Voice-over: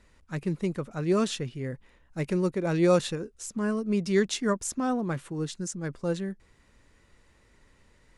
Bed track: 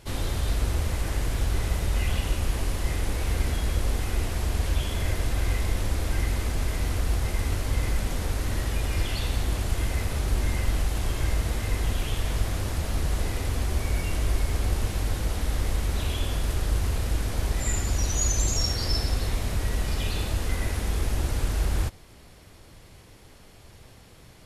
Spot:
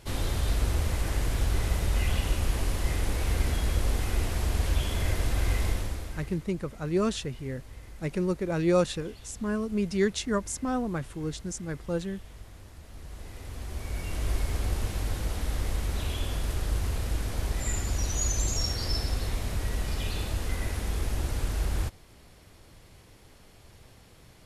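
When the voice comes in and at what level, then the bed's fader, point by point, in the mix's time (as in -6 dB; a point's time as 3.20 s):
5.85 s, -1.5 dB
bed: 5.68 s -1 dB
6.47 s -20 dB
12.82 s -20 dB
14.31 s -3.5 dB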